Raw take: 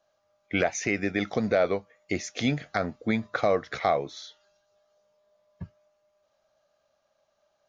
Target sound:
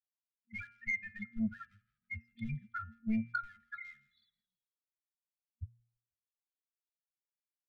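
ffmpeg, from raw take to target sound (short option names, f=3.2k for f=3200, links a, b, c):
-filter_complex "[0:a]asettb=1/sr,asplit=3[a][b][c];[a]atrim=end=0.634[d];[b]atrim=start=0.63:end=2.94,asetpts=PTS-STARTPTS,afade=t=in:d=0.004:c=qsin,afade=t=out:st=2.306:d=0.004:c=qsin,aemphasis=mode=reproduction:type=cd[e];[c]atrim=start=2.936[f];[d][e]acrossfade=d=0.004:c1=hsin:c2=qsin[g];[g][f]acrossfade=d=0.004:c1=qsin:c2=hsin,afftfilt=real='re*gte(hypot(re,im),0.02)':imag='im*gte(hypot(re,im),0.02)':win_size=1024:overlap=0.75,aresample=11025,aresample=44100,asoftclip=type=hard:threshold=-24dB,aecho=1:1:2.9:0.78,asplit=4[h][i][j][k];[i]adelay=164,afreqshift=-55,volume=-18dB[l];[j]adelay=328,afreqshift=-110,volume=-26.4dB[m];[k]adelay=492,afreqshift=-165,volume=-34.8dB[n];[h][l][m][n]amix=inputs=4:normalize=0,afftdn=nr=32:nf=-20,afftfilt=real='re*(1-between(b*sr/4096,230,1200))':imag='im*(1-between(b*sr/4096,230,1200))':win_size=4096:overlap=0.75,asoftclip=type=tanh:threshold=-24.5dB,bandreject=f=117.6:t=h:w=4,bandreject=f=235.2:t=h:w=4,bandreject=f=352.8:t=h:w=4,bandreject=f=470.4:t=h:w=4,bandreject=f=588:t=h:w=4,bandreject=f=705.6:t=h:w=4,bandreject=f=823.2:t=h:w=4,bandreject=f=940.8:t=h:w=4,bandreject=f=1.0584k:t=h:w=4,bandreject=f=1.176k:t=h:w=4,bandreject=f=1.2936k:t=h:w=4,bandreject=f=1.4112k:t=h:w=4,bandreject=f=1.5288k:t=h:w=4,bandreject=f=1.6464k:t=h:w=4,bandreject=f=1.764k:t=h:w=4,bandreject=f=1.8816k:t=h:w=4,bandreject=f=1.9992k:t=h:w=4,bandreject=f=2.1168k:t=h:w=4,bandreject=f=2.2344k:t=h:w=4,bandreject=f=2.352k:t=h:w=4,bandreject=f=2.4696k:t=h:w=4,bandreject=f=2.5872k:t=h:w=4,bandreject=f=2.7048k:t=h:w=4,bandreject=f=2.8224k:t=h:w=4,bandreject=f=2.94k:t=h:w=4,bandreject=f=3.0576k:t=h:w=4,volume=2dB"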